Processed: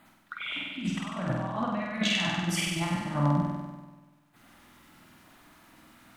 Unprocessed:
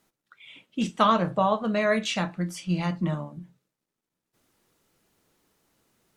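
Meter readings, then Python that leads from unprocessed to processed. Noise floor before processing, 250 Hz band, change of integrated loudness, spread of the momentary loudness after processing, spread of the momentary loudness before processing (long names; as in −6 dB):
below −85 dBFS, −2.0 dB, −4.0 dB, 12 LU, 13 LU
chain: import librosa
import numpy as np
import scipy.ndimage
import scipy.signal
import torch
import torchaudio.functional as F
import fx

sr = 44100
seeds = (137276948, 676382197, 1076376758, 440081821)

p1 = fx.curve_eq(x, sr, hz=(110.0, 300.0, 430.0, 630.0, 2000.0, 6900.0), db=(0, 5, -11, 5, 5, -4))
p2 = fx.over_compress(p1, sr, threshold_db=-33.0, ratio=-1.0)
p3 = fx.filter_lfo_notch(p2, sr, shape='square', hz=8.6, low_hz=570.0, high_hz=5700.0, q=1.2)
y = p3 + fx.room_flutter(p3, sr, wall_m=8.3, rt60_s=1.3, dry=0)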